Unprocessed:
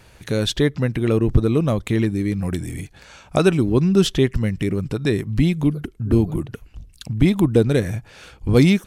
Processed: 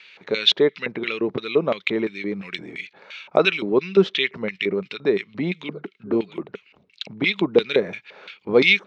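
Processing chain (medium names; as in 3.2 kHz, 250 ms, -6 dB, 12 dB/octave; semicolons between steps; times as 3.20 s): LFO band-pass square 2.9 Hz 730–2800 Hz; cabinet simulation 160–6100 Hz, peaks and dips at 190 Hz +8 dB, 410 Hz +7 dB, 730 Hz -8 dB, 1.3 kHz +3 dB, 2.2 kHz +8 dB, 3.9 kHz +7 dB; trim +8 dB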